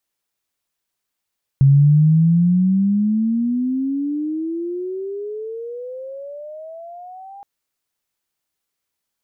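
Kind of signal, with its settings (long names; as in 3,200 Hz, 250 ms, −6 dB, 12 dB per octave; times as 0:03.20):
pitch glide with a swell sine, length 5.82 s, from 135 Hz, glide +31 semitones, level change −27.5 dB, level −7.5 dB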